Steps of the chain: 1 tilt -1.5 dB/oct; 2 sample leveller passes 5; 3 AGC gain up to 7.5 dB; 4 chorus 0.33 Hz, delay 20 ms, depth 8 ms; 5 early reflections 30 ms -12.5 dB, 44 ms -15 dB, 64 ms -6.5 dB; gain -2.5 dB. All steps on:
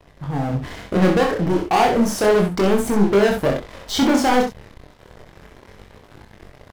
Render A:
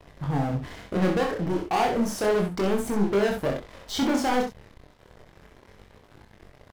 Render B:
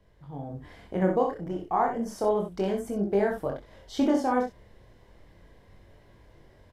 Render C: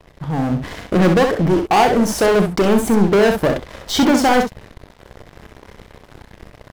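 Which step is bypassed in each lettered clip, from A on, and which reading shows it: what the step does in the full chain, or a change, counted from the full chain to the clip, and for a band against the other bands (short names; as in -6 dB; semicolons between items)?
3, momentary loudness spread change -2 LU; 2, crest factor change +3.5 dB; 4, crest factor change -2.0 dB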